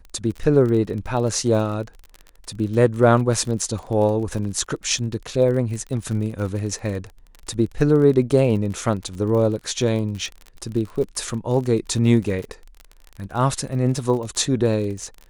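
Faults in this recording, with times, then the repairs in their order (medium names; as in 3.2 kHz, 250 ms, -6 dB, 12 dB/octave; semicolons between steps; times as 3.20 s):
crackle 38 per s -29 dBFS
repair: de-click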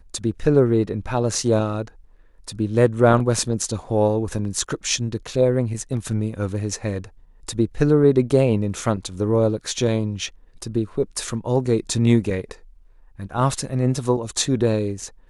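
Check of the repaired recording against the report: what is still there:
nothing left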